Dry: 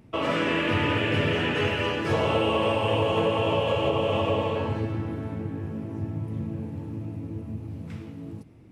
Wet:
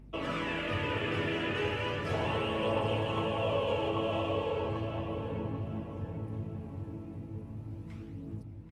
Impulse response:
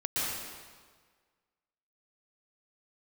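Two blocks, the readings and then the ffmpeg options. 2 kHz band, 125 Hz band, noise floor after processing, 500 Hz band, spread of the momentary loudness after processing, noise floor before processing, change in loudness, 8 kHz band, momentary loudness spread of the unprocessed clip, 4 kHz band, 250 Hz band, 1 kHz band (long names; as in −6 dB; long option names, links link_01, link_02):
−7.5 dB, −7.0 dB, −46 dBFS, −7.5 dB, 12 LU, −41 dBFS, −7.5 dB, can't be measured, 13 LU, −8.0 dB, −7.5 dB, −7.0 dB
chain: -filter_complex "[0:a]aeval=exprs='val(0)+0.00562*(sin(2*PI*50*n/s)+sin(2*PI*2*50*n/s)/2+sin(2*PI*3*50*n/s)/3+sin(2*PI*4*50*n/s)/4+sin(2*PI*5*50*n/s)/5)':channel_layout=same,aphaser=in_gain=1:out_gain=1:delay=3.1:decay=0.37:speed=0.36:type=triangular,asplit=2[link_01][link_02];[link_02]adelay=789,lowpass=frequency=2400:poles=1,volume=-5.5dB,asplit=2[link_03][link_04];[link_04]adelay=789,lowpass=frequency=2400:poles=1,volume=0.37,asplit=2[link_05][link_06];[link_06]adelay=789,lowpass=frequency=2400:poles=1,volume=0.37,asplit=2[link_07][link_08];[link_08]adelay=789,lowpass=frequency=2400:poles=1,volume=0.37[link_09];[link_01][link_03][link_05][link_07][link_09]amix=inputs=5:normalize=0,volume=-9dB"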